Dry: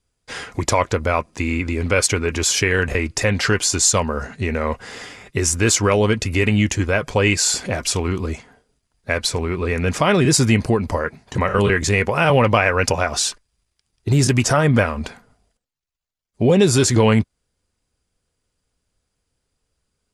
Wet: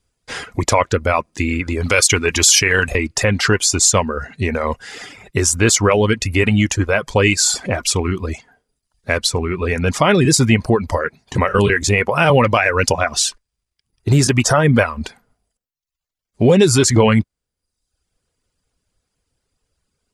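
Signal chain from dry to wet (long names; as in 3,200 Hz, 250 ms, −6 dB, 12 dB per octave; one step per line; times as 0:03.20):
reverb reduction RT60 0.75 s
0:01.83–0:02.90: high-shelf EQ 2,100 Hz +11.5 dB
boost into a limiter +4.5 dB
level −1 dB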